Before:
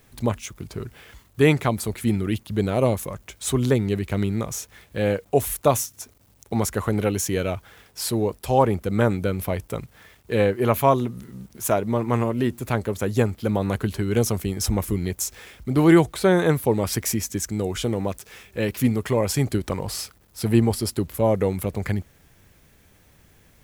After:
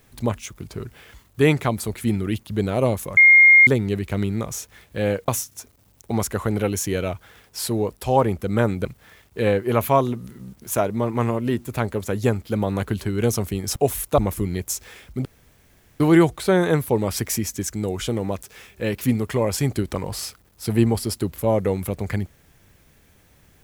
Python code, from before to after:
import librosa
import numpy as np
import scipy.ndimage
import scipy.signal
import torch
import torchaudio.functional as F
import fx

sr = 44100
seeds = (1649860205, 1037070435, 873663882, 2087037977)

y = fx.edit(x, sr, fx.bleep(start_s=3.17, length_s=0.5, hz=2130.0, db=-7.5),
    fx.move(start_s=5.28, length_s=0.42, to_s=14.69),
    fx.cut(start_s=9.27, length_s=0.51),
    fx.insert_room_tone(at_s=15.76, length_s=0.75), tone=tone)